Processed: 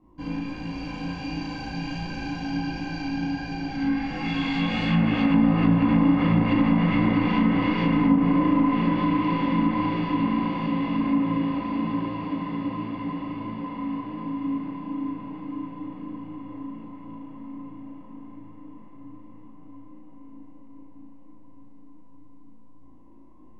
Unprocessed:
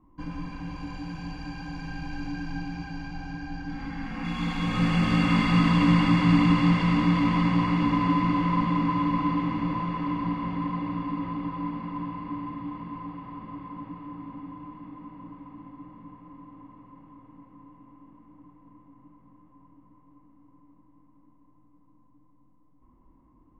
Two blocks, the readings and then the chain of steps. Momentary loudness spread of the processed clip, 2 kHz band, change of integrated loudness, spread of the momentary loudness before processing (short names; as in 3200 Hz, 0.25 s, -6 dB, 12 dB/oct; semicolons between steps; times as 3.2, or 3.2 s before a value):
18 LU, +1.0 dB, +1.5 dB, 20 LU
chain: overdrive pedal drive 14 dB, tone 4700 Hz, clips at -9 dBFS; EQ curve 110 Hz 0 dB, 640 Hz -3 dB, 1200 Hz -15 dB, 2600 Hz -6 dB; in parallel at -3 dB: compressor, threshold -31 dBFS, peak gain reduction 12.5 dB; on the sum: flutter echo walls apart 6.2 m, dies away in 0.72 s; chorus 1.4 Hz, delay 19 ms, depth 3.1 ms; diffused feedback echo 0.569 s, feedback 48%, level -3.5 dB; treble ducked by the level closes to 1100 Hz, closed at -16 dBFS; gain +1.5 dB